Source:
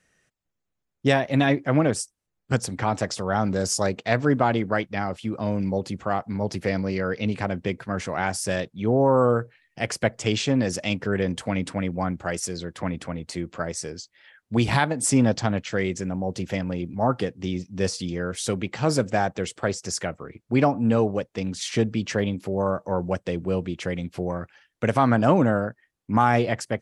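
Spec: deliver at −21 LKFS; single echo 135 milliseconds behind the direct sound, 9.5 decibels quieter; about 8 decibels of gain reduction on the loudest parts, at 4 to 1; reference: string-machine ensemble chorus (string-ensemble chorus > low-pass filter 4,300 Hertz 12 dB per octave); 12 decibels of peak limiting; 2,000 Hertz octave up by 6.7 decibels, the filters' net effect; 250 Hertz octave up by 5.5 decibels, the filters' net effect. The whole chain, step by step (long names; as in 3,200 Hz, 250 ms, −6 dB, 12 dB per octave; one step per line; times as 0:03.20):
parametric band 250 Hz +6.5 dB
parametric band 2,000 Hz +8.5 dB
downward compressor 4 to 1, threshold −20 dBFS
brickwall limiter −18 dBFS
single-tap delay 135 ms −9.5 dB
string-ensemble chorus
low-pass filter 4,300 Hz 12 dB per octave
level +11 dB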